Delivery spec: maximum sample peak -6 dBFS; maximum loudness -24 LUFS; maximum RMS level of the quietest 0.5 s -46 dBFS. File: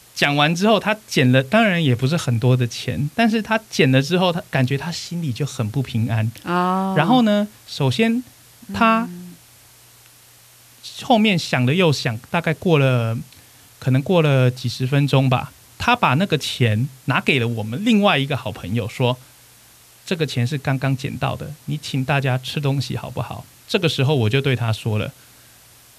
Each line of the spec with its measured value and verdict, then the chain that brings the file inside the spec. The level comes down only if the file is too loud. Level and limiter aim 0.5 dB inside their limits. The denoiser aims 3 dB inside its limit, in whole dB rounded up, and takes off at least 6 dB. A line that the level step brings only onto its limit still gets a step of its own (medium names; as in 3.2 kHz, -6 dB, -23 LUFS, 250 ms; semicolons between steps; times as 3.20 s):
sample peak -3.5 dBFS: fail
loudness -19.5 LUFS: fail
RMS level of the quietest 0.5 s -49 dBFS: pass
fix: trim -5 dB